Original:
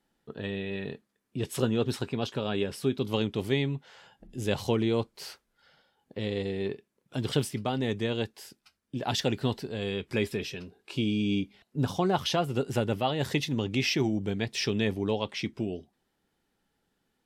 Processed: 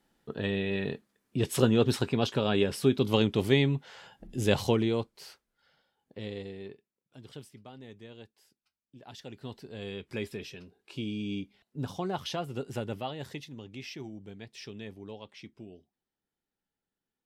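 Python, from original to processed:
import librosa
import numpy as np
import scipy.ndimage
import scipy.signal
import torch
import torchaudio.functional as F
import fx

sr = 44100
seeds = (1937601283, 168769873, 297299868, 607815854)

y = fx.gain(x, sr, db=fx.line((4.56, 3.5), (5.25, -6.5), (6.28, -6.5), (7.17, -18.5), (9.19, -18.5), (9.79, -7.0), (12.99, -7.0), (13.51, -15.0)))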